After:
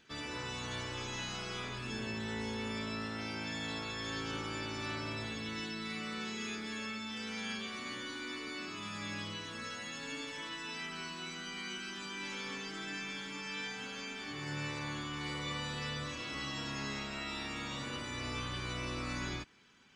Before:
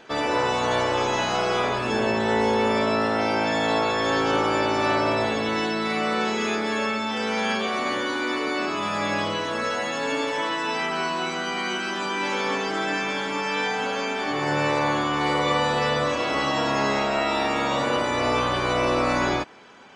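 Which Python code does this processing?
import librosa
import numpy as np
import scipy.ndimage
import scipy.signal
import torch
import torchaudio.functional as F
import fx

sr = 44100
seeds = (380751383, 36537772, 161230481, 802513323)

y = fx.tone_stack(x, sr, knobs='6-0-2')
y = F.gain(torch.from_numpy(y), 5.0).numpy()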